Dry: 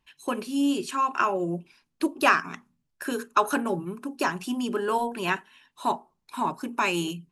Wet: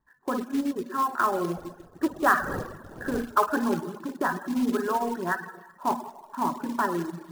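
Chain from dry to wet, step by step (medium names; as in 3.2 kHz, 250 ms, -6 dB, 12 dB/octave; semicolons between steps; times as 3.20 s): 1.56–3.26 s: wind noise 470 Hz -29 dBFS; Chebyshev low-pass 1.9 kHz, order 10; spring tank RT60 1.2 s, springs 51/55/59 ms, chirp 60 ms, DRR 3.5 dB; short-mantissa float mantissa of 2-bit; reverb removal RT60 0.62 s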